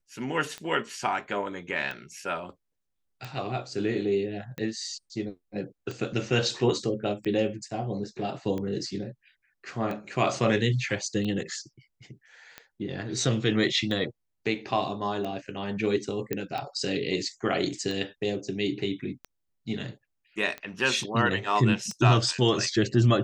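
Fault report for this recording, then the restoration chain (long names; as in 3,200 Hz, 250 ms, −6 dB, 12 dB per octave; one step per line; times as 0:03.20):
scratch tick 45 rpm −22 dBFS
0:16.33: click −14 dBFS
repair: click removal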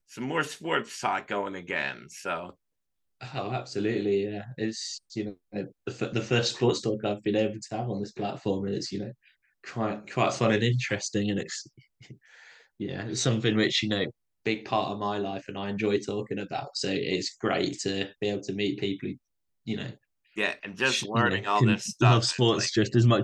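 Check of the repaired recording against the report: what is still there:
none of them is left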